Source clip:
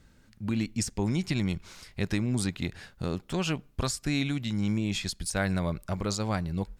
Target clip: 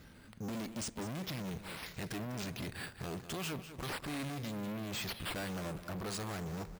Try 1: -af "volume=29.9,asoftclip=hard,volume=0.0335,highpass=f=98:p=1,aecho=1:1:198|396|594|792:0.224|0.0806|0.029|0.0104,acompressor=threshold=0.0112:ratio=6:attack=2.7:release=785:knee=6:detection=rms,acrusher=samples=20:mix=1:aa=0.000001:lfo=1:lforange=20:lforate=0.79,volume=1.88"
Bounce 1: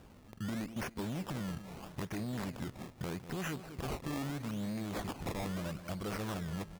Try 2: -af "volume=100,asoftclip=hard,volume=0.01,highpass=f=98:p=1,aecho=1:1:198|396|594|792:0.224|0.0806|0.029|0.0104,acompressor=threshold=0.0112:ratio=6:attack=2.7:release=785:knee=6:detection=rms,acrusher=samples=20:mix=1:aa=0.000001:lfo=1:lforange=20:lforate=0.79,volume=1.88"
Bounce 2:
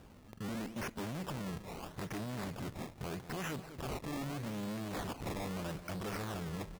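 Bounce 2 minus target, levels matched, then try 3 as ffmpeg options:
decimation with a swept rate: distortion +5 dB
-af "volume=100,asoftclip=hard,volume=0.01,highpass=f=98:p=1,aecho=1:1:198|396|594|792:0.224|0.0806|0.029|0.0104,acompressor=threshold=0.0112:ratio=6:attack=2.7:release=785:knee=6:detection=rms,acrusher=samples=5:mix=1:aa=0.000001:lfo=1:lforange=5:lforate=0.79,volume=1.88"

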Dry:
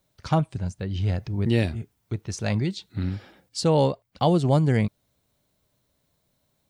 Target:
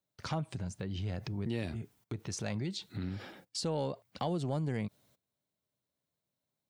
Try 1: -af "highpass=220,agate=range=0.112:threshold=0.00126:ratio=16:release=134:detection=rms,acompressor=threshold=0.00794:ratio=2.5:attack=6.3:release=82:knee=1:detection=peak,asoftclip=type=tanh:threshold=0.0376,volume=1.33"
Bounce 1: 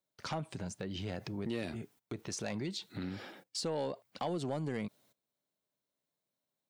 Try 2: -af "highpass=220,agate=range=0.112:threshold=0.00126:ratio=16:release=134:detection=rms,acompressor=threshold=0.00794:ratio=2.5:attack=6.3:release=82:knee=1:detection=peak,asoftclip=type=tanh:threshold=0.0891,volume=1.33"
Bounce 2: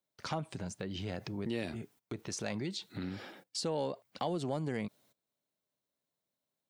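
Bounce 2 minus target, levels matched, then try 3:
125 Hz band -4.0 dB
-af "highpass=110,agate=range=0.112:threshold=0.00126:ratio=16:release=134:detection=rms,acompressor=threshold=0.00794:ratio=2.5:attack=6.3:release=82:knee=1:detection=peak,asoftclip=type=tanh:threshold=0.0891,volume=1.33"

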